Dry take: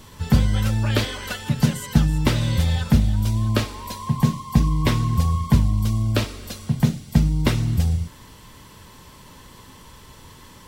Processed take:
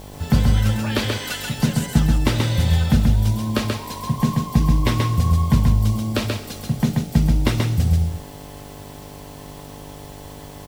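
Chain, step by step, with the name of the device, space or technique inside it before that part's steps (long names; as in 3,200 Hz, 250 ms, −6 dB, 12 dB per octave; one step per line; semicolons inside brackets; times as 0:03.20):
0:01.17–0:01.59: tilt shelving filter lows −5 dB, about 1,500 Hz
video cassette with head-switching buzz (hum with harmonics 50 Hz, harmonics 17, −40 dBFS −3 dB per octave; white noise bed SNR 30 dB)
single-tap delay 133 ms −3.5 dB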